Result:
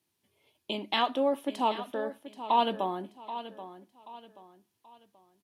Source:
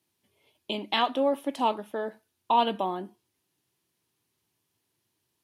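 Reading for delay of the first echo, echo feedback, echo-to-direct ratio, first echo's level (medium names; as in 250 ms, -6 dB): 781 ms, 35%, -12.5 dB, -13.0 dB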